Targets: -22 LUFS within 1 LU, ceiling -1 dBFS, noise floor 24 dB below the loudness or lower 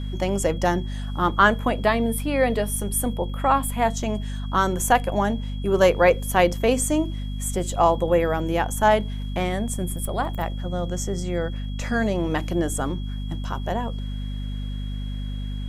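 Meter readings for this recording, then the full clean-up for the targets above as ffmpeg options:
hum 50 Hz; harmonics up to 250 Hz; hum level -27 dBFS; steady tone 3300 Hz; tone level -45 dBFS; loudness -23.5 LUFS; peak -3.5 dBFS; loudness target -22.0 LUFS
-> -af "bandreject=f=50:t=h:w=4,bandreject=f=100:t=h:w=4,bandreject=f=150:t=h:w=4,bandreject=f=200:t=h:w=4,bandreject=f=250:t=h:w=4"
-af "bandreject=f=3.3k:w=30"
-af "volume=1.5dB"

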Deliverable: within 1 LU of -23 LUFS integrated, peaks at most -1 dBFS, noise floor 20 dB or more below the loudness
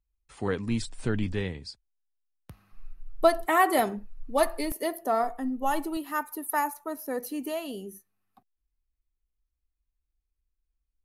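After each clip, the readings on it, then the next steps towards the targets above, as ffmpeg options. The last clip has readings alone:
loudness -29.0 LUFS; peak -8.5 dBFS; loudness target -23.0 LUFS
-> -af "volume=6dB"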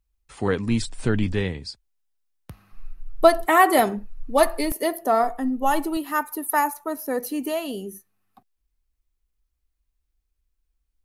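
loudness -23.0 LUFS; peak -2.5 dBFS; noise floor -77 dBFS

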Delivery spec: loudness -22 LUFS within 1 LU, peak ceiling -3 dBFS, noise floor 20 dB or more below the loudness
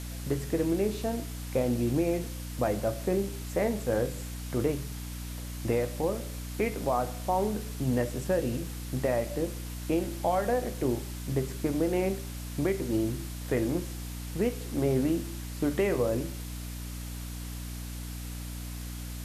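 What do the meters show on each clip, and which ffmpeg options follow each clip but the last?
hum 60 Hz; harmonics up to 300 Hz; hum level -36 dBFS; noise floor -38 dBFS; noise floor target -51 dBFS; loudness -31.0 LUFS; peak -15.0 dBFS; loudness target -22.0 LUFS
-> -af "bandreject=f=60:t=h:w=4,bandreject=f=120:t=h:w=4,bandreject=f=180:t=h:w=4,bandreject=f=240:t=h:w=4,bandreject=f=300:t=h:w=4"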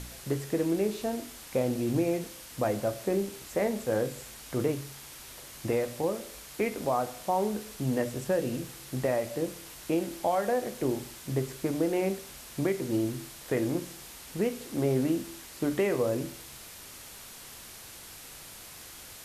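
hum none; noise floor -47 dBFS; noise floor target -51 dBFS
-> -af "afftdn=nr=6:nf=-47"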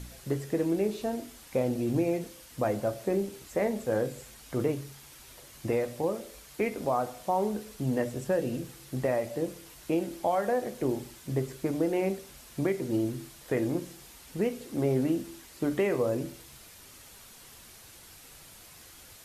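noise floor -52 dBFS; loudness -31.0 LUFS; peak -16.0 dBFS; loudness target -22.0 LUFS
-> -af "volume=9dB"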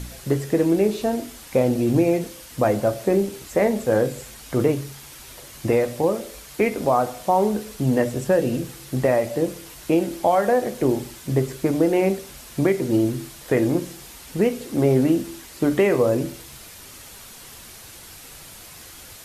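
loudness -22.0 LUFS; peak -7.0 dBFS; noise floor -43 dBFS

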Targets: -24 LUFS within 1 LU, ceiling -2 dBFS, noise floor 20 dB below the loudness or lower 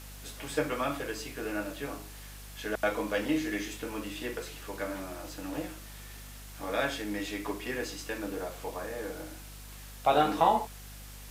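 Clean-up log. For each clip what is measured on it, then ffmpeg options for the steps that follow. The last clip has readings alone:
hum 50 Hz; harmonics up to 250 Hz; hum level -45 dBFS; noise floor -46 dBFS; noise floor target -53 dBFS; loudness -33.0 LUFS; peak -11.5 dBFS; loudness target -24.0 LUFS
-> -af "bandreject=f=50:t=h:w=4,bandreject=f=100:t=h:w=4,bandreject=f=150:t=h:w=4,bandreject=f=200:t=h:w=4,bandreject=f=250:t=h:w=4"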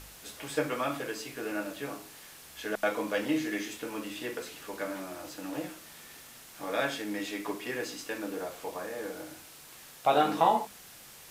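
hum none; noise floor -51 dBFS; noise floor target -53 dBFS
-> -af "afftdn=nr=6:nf=-51"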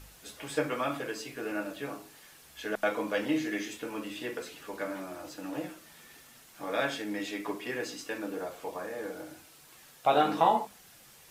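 noise floor -56 dBFS; loudness -33.5 LUFS; peak -12.0 dBFS; loudness target -24.0 LUFS
-> -af "volume=9.5dB"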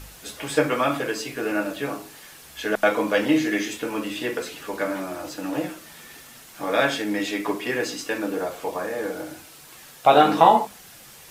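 loudness -24.0 LUFS; peak -2.5 dBFS; noise floor -47 dBFS

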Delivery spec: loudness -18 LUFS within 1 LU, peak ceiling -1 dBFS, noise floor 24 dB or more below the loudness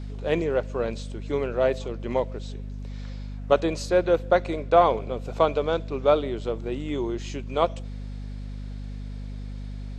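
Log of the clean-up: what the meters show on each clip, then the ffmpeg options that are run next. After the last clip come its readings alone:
hum 50 Hz; harmonics up to 250 Hz; hum level -32 dBFS; loudness -25.0 LUFS; peak -5.0 dBFS; loudness target -18.0 LUFS
-> -af "bandreject=f=50:t=h:w=4,bandreject=f=100:t=h:w=4,bandreject=f=150:t=h:w=4,bandreject=f=200:t=h:w=4,bandreject=f=250:t=h:w=4"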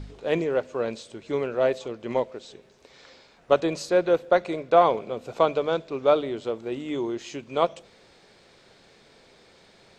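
hum none; loudness -25.5 LUFS; peak -5.5 dBFS; loudness target -18.0 LUFS
-> -af "volume=7.5dB,alimiter=limit=-1dB:level=0:latency=1"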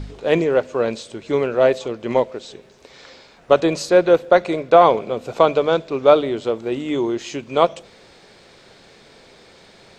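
loudness -18.5 LUFS; peak -1.0 dBFS; noise floor -49 dBFS

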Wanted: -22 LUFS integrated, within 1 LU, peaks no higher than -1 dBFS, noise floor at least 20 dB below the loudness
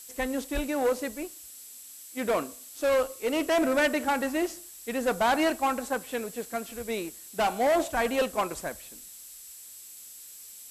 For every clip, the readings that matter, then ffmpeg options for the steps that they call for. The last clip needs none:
steady tone 7700 Hz; tone level -50 dBFS; noise floor -47 dBFS; noise floor target -49 dBFS; loudness -28.5 LUFS; peak -16.0 dBFS; loudness target -22.0 LUFS
-> -af "bandreject=f=7.7k:w=30"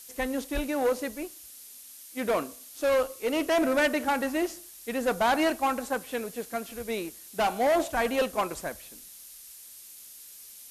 steady tone none; noise floor -48 dBFS; noise floor target -49 dBFS
-> -af "afftdn=nr=6:nf=-48"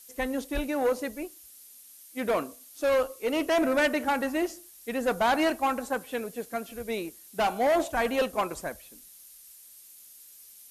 noise floor -52 dBFS; loudness -28.5 LUFS; peak -16.5 dBFS; loudness target -22.0 LUFS
-> -af "volume=6.5dB"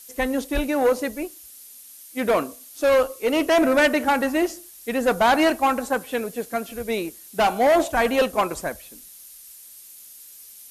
loudness -22.0 LUFS; peak -10.0 dBFS; noise floor -45 dBFS

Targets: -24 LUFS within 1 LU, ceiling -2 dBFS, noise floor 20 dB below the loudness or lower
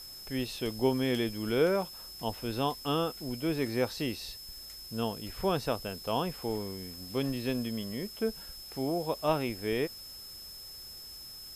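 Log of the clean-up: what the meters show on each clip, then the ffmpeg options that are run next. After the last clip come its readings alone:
steady tone 5200 Hz; tone level -45 dBFS; noise floor -46 dBFS; noise floor target -54 dBFS; loudness -33.5 LUFS; peak -14.0 dBFS; loudness target -24.0 LUFS
-> -af "bandreject=f=5.2k:w=30"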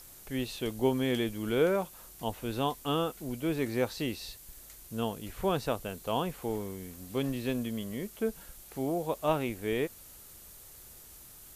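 steady tone none; noise floor -52 dBFS; noise floor target -53 dBFS
-> -af "afftdn=nr=6:nf=-52"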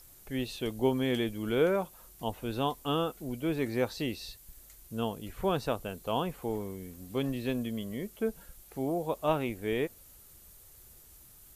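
noise floor -55 dBFS; loudness -33.0 LUFS; peak -14.0 dBFS; loudness target -24.0 LUFS
-> -af "volume=9dB"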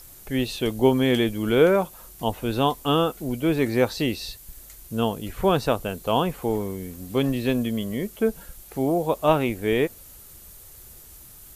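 loudness -24.0 LUFS; peak -5.0 dBFS; noise floor -46 dBFS

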